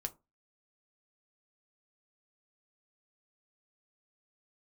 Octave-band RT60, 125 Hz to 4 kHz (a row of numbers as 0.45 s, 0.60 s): 0.30 s, 0.30 s, 0.25 s, 0.25 s, 0.15 s, 0.15 s